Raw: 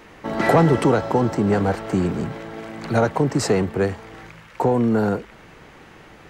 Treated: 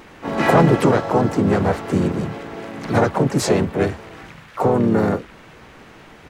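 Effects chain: vibrato 1.7 Hz 8.5 cents; harmoniser -3 st -5 dB, +4 st -7 dB, +7 st -12 dB

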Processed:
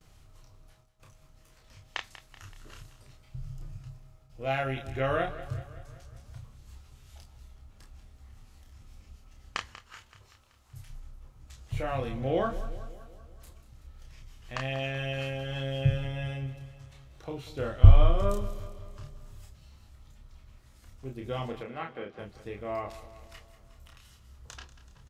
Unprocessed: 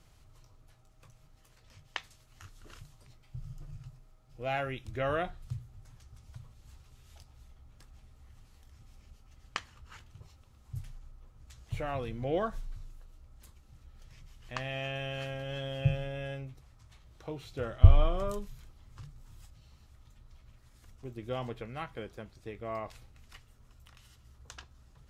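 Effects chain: gate with hold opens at -52 dBFS; 9.75–10.9 low shelf 400 Hz -11 dB; 21.6–22.19 BPF 190–3100 Hz; doubler 30 ms -3.5 dB; feedback echo 0.19 s, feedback 57%, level -15 dB; gain +1.5 dB

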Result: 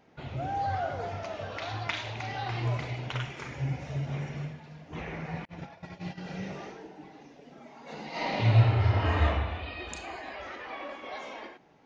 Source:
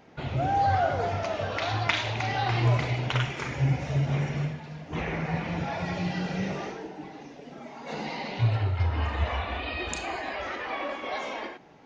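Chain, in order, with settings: 5.45–6.27 gate -29 dBFS, range -37 dB; 8.1–9.25 reverb throw, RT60 1.1 s, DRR -11 dB; gain -7 dB

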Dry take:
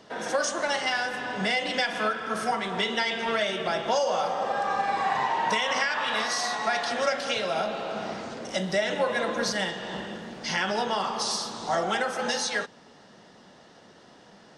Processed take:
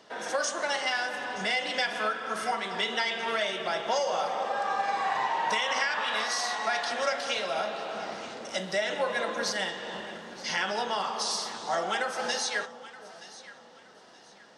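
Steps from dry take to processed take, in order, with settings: low shelf 250 Hz -12 dB; echo with dull and thin repeats by turns 0.462 s, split 960 Hz, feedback 56%, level -12 dB; gain -1.5 dB

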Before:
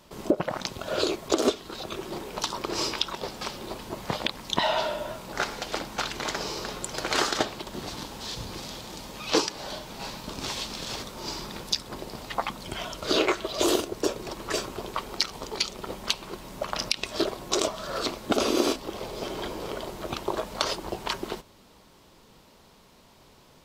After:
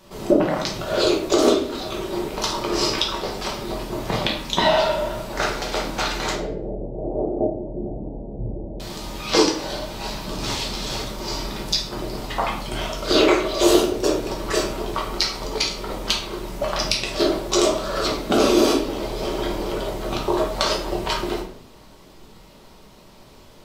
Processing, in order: 6.34–8.8 steep low-pass 700 Hz 48 dB/oct; shoebox room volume 97 m³, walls mixed, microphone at 1.1 m; gain +2 dB

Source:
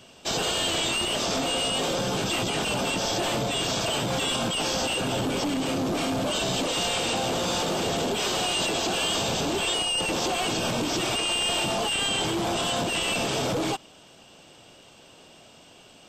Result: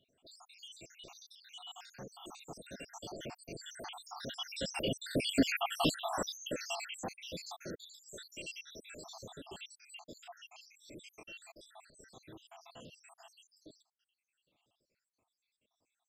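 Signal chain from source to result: random spectral dropouts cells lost 81%; Doppler pass-by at 5.59, 9 m/s, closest 2.2 m; gain +6 dB

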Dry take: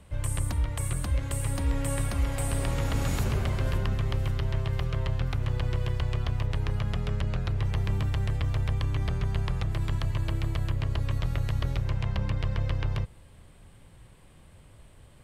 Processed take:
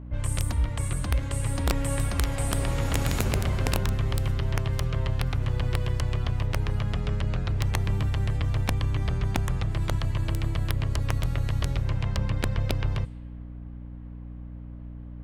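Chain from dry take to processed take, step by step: wrapped overs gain 17.5 dB; low-pass opened by the level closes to 1300 Hz, open at -23 dBFS; hum 60 Hz, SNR 13 dB; gain +1.5 dB

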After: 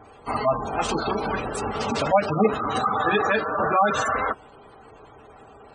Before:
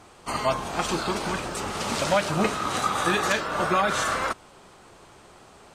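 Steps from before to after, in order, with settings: notch comb 180 Hz; dynamic EQ 210 Hz, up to +3 dB, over -46 dBFS, Q 5.7; spectral gate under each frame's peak -15 dB strong; small resonant body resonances 440/760/2700 Hz, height 6 dB; gain +3.5 dB

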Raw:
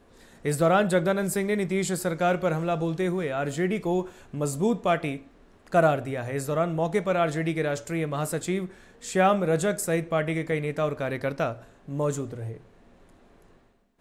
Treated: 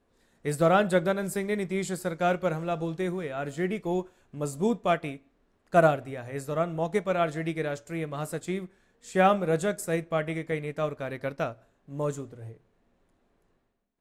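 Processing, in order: speakerphone echo 0.17 s, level -28 dB; upward expander 1.5:1, over -45 dBFS; gain +1 dB

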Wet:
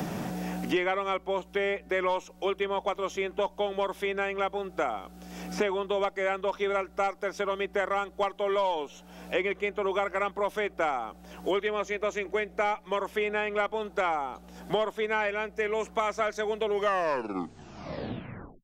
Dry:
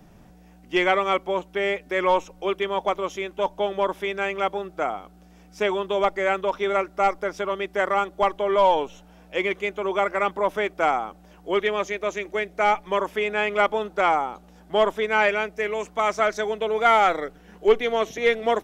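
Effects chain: tape stop at the end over 2.01 s; three-band squash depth 100%; gain -6.5 dB

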